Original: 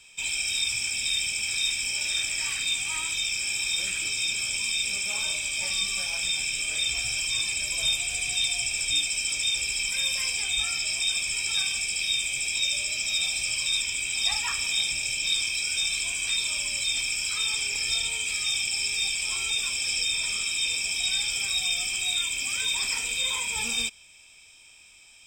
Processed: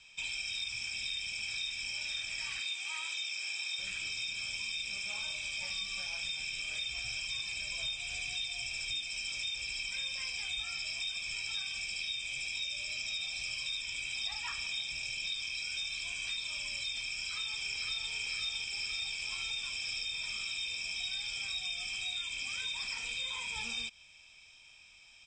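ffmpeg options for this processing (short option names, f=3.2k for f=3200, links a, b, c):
-filter_complex "[0:a]asettb=1/sr,asplit=3[a][b][c];[a]atrim=end=2.604[d];[b]atrim=start=2.6:end=3.79,asetpts=PTS-STARTPTS,afade=t=in:d=0.004:c=qsin,afade=t=out:st=1.186:d=0.004:c=qsin,highpass=390[e];[c]atrim=start=3.786[f];[d][e]acrossfade=d=0.004:c1=hsin:c2=qsin[g];[g][f]acrossfade=d=0.004:c1=qsin:c2=hsin,asplit=2[h][i];[i]afade=t=in:st=17.13:d=0.01,afade=t=out:st=18.13:d=0.01,aecho=0:1:510|1020|1530|2040|2550|3060|3570|4080|4590|5100|5610:0.944061|0.61364|0.398866|0.259263|0.168521|0.109538|0.0712|0.04628|0.030082|0.0195533|0.0127096[j];[h][j]amix=inputs=2:normalize=0,lowpass=f=6.2k:w=0.5412,lowpass=f=6.2k:w=1.3066,equalizer=f=360:w=1.6:g=-7,acompressor=threshold=-32dB:ratio=4,volume=-3.5dB"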